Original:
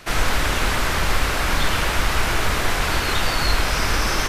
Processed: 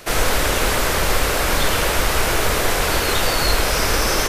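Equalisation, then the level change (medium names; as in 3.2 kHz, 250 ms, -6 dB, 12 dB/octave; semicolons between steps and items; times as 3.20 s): peaking EQ 490 Hz +8 dB 1 oct; treble shelf 6.7 kHz +10.5 dB; 0.0 dB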